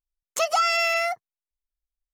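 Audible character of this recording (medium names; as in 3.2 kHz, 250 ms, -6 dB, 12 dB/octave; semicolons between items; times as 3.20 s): noise floor -94 dBFS; spectral tilt -5.5 dB/octave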